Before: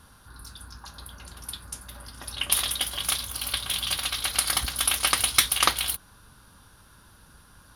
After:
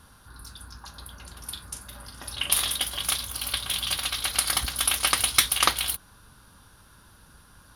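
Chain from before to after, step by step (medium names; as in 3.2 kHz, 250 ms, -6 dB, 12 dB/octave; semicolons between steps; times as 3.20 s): 1.39–2.78 s: doubling 40 ms -9 dB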